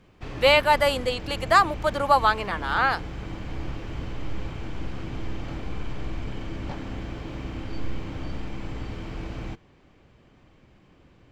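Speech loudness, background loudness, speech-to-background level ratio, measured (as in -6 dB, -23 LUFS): -22.0 LUFS, -36.0 LUFS, 14.0 dB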